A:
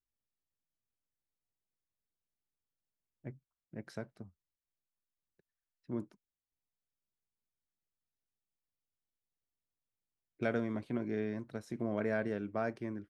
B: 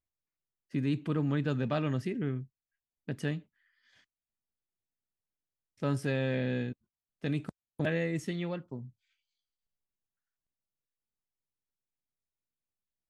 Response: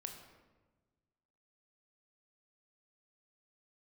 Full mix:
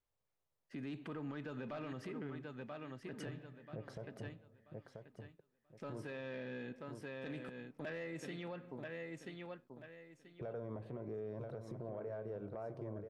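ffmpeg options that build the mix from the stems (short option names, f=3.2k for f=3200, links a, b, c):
-filter_complex "[0:a]equalizer=f=125:t=o:w=1:g=8,equalizer=f=250:t=o:w=1:g=-8,equalizer=f=500:t=o:w=1:g=10,equalizer=f=1k:t=o:w=1:g=6,equalizer=f=2k:t=o:w=1:g=-8,acompressor=threshold=-38dB:ratio=10,volume=1dB,asplit=4[a][b][c][d];[b]volume=-7dB[e];[c]volume=-7dB[f];[1:a]asoftclip=type=tanh:threshold=-20dB,highpass=f=640:p=1,volume=2dB,asplit=3[g][h][i];[h]volume=-9.5dB[j];[i]volume=-8dB[k];[d]apad=whole_len=577402[l];[g][l]sidechaincompress=threshold=-44dB:ratio=8:attack=5.7:release=468[m];[2:a]atrim=start_sample=2205[n];[e][j]amix=inputs=2:normalize=0[o];[o][n]afir=irnorm=-1:irlink=0[p];[f][k]amix=inputs=2:normalize=0,aecho=0:1:984|1968|2952|3936:1|0.24|0.0576|0.0138[q];[a][m][p][q]amix=inputs=4:normalize=0,highshelf=f=3.4k:g=-11,asoftclip=type=tanh:threshold=-25.5dB,alimiter=level_in=12.5dB:limit=-24dB:level=0:latency=1:release=120,volume=-12.5dB"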